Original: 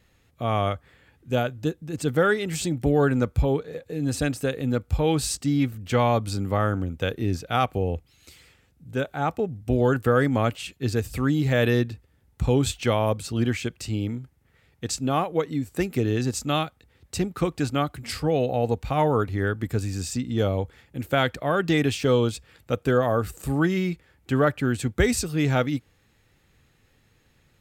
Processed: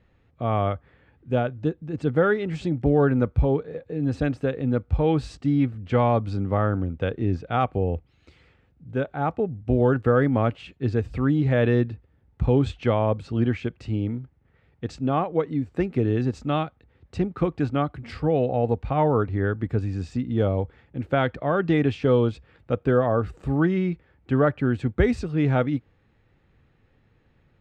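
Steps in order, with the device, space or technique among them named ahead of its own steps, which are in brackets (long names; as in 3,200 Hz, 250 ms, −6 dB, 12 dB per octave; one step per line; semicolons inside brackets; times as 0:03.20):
phone in a pocket (low-pass filter 3,600 Hz 12 dB per octave; high-shelf EQ 2,100 Hz −10.5 dB)
level +1.5 dB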